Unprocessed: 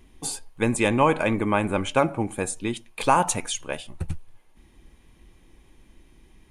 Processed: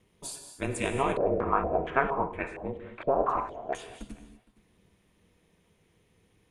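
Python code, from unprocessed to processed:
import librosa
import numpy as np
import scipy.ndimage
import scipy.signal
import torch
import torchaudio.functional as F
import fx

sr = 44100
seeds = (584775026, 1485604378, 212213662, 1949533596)

y = fx.highpass(x, sr, hz=100.0, slope=6)
y = y * np.sin(2.0 * np.pi * 130.0 * np.arange(len(y)) / sr)
y = y + 10.0 ** (-22.0 / 20.0) * np.pad(y, (int(463 * sr / 1000.0), 0))[:len(y)]
y = fx.rev_gated(y, sr, seeds[0], gate_ms=270, shape='flat', drr_db=5.0)
y = fx.filter_held_lowpass(y, sr, hz=4.3, low_hz=560.0, high_hz=2100.0, at=(1.17, 3.75))
y = F.gain(torch.from_numpy(y), -6.0).numpy()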